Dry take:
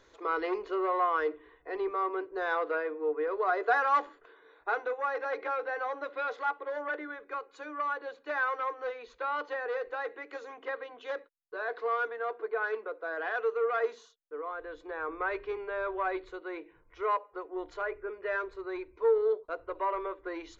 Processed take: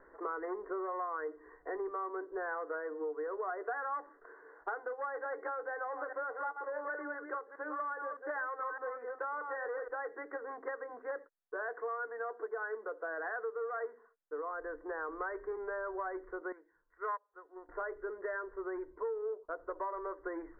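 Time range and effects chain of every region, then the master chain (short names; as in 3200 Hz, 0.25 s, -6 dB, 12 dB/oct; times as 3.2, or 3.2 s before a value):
5.72–9.88 reverse delay 0.204 s, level -8 dB + HPF 230 Hz
16.52–17.69 bell 1600 Hz +10.5 dB 1.1 oct + upward expander 2.5:1, over -34 dBFS
whole clip: steep low-pass 1900 Hz 96 dB/oct; bell 90 Hz -13.5 dB 1.1 oct; compressor 6:1, threshold -39 dBFS; gain +3 dB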